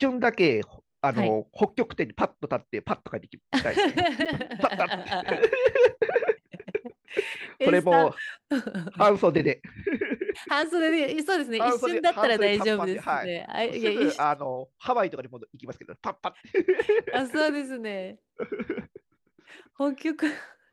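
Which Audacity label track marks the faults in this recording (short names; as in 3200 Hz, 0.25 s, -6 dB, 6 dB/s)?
4.250000	4.260000	gap 7.4 ms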